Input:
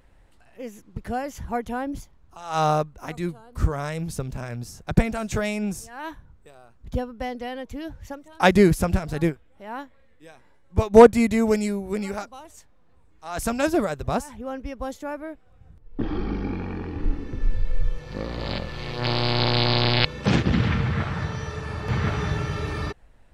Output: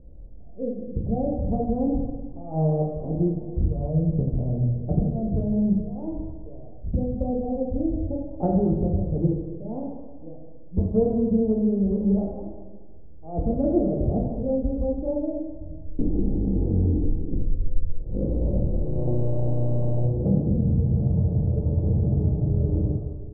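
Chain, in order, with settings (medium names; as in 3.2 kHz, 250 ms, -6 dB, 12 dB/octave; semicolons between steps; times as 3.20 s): steep low-pass 630 Hz 36 dB/octave; bass shelf 340 Hz +8.5 dB; compression 6:1, threshold -23 dBFS, peak gain reduction 18.5 dB; plate-style reverb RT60 1.4 s, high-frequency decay 0.85×, DRR -2.5 dB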